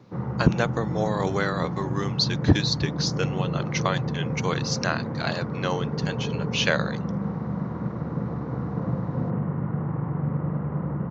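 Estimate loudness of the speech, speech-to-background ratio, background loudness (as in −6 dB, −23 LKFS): −27.5 LKFS, 1.5 dB, −29.0 LKFS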